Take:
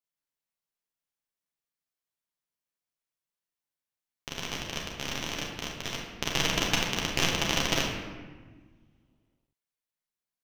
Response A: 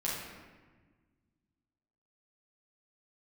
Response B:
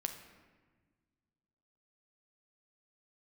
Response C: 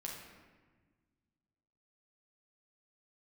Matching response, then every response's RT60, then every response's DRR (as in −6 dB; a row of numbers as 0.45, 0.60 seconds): C; 1.4, 1.4, 1.4 seconds; −7.5, 5.5, −2.5 decibels